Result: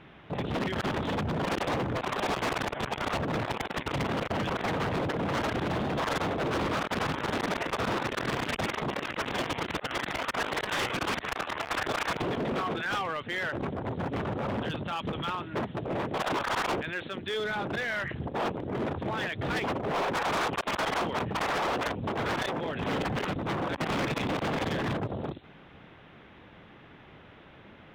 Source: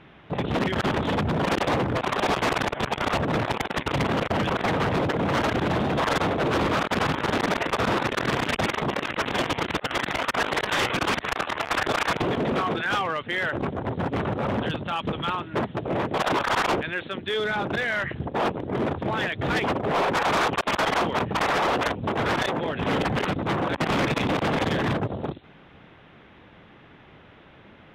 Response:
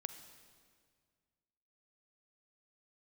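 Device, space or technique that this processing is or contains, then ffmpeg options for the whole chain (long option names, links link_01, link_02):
clipper into limiter: -af "asoftclip=type=hard:threshold=-21.5dB,alimiter=level_in=1dB:limit=-24dB:level=0:latency=1:release=24,volume=-1dB,volume=-1.5dB"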